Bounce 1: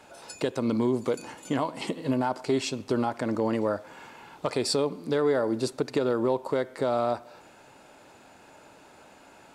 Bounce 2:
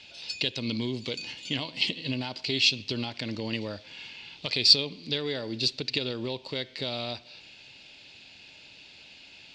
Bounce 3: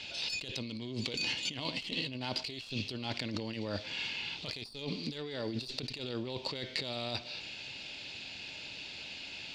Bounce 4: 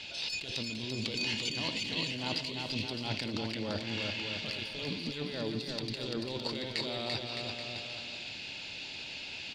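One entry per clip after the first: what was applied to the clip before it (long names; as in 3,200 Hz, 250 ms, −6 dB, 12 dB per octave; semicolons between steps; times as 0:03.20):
drawn EQ curve 110 Hz 0 dB, 380 Hz −9 dB, 1,300 Hz −14 dB, 2,700 Hz +13 dB, 4,600 Hz +14 dB, 11,000 Hz −22 dB
one-sided soft clipper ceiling −20.5 dBFS; compressor whose output falls as the input rises −39 dBFS, ratio −1
bouncing-ball delay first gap 340 ms, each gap 0.8×, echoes 5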